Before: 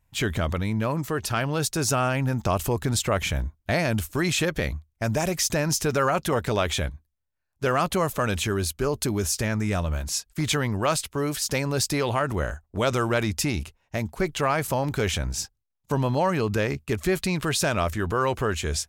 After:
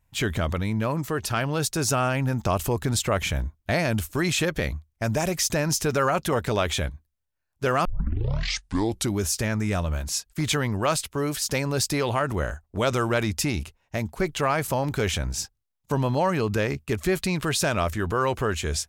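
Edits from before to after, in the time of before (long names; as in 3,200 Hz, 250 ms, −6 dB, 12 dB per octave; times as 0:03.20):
0:07.85: tape start 1.32 s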